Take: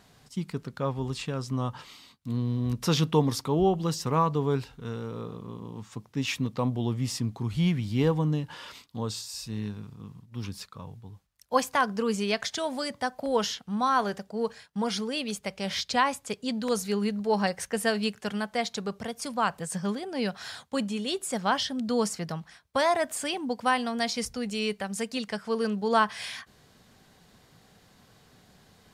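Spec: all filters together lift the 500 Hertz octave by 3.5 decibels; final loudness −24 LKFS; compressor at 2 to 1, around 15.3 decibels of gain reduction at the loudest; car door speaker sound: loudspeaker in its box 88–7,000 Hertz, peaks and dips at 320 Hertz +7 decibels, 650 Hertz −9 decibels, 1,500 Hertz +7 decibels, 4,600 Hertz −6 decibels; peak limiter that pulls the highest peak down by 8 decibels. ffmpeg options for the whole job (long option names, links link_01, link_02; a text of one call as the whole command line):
ffmpeg -i in.wav -af "equalizer=frequency=500:width_type=o:gain=5,acompressor=threshold=-44dB:ratio=2,alimiter=level_in=6.5dB:limit=-24dB:level=0:latency=1,volume=-6.5dB,highpass=88,equalizer=frequency=320:width_type=q:width=4:gain=7,equalizer=frequency=650:width_type=q:width=4:gain=-9,equalizer=frequency=1500:width_type=q:width=4:gain=7,equalizer=frequency=4600:width_type=q:width=4:gain=-6,lowpass=frequency=7000:width=0.5412,lowpass=frequency=7000:width=1.3066,volume=17dB" out.wav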